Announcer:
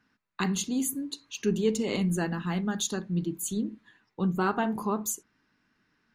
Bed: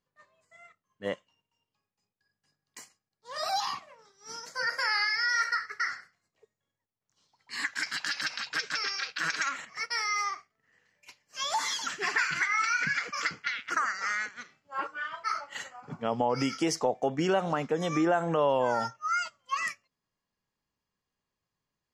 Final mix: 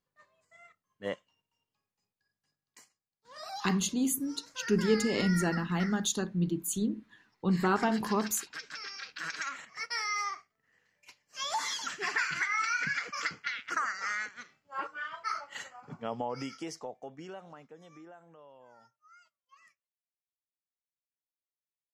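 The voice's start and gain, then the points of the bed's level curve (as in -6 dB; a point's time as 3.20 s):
3.25 s, -0.5 dB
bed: 2.09 s -2.5 dB
2.93 s -11 dB
8.70 s -11 dB
9.93 s -3 dB
15.79 s -3 dB
18.46 s -30 dB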